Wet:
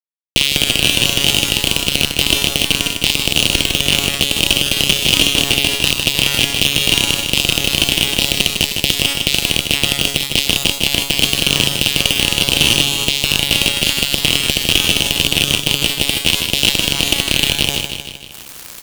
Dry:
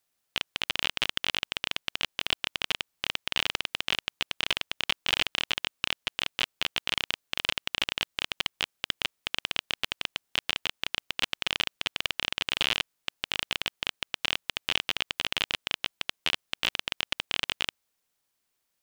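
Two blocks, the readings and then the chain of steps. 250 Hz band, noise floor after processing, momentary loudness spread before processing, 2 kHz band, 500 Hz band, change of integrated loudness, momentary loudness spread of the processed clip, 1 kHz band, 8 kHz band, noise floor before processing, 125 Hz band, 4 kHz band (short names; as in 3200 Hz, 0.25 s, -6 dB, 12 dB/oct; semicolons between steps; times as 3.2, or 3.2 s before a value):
+24.0 dB, -33 dBFS, 5 LU, +14.0 dB, +19.0 dB, +16.5 dB, 3 LU, +10.5 dB, +25.0 dB, -79 dBFS, +26.5 dB, +16.5 dB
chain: recorder AGC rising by 46 dB/s; Chebyshev band-stop 330–2500 Hz, order 3; low shelf 350 Hz +6.5 dB; compressor 5:1, threshold -31 dBFS, peak gain reduction 17.5 dB; transient shaper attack 0 dB, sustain +6 dB; resonator 140 Hz, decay 1.5 s, mix 80%; fuzz box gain 48 dB, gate -55 dBFS; companded quantiser 4-bit; feedback echo 0.155 s, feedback 56%, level -10.5 dB; maximiser +15 dB; gain -1 dB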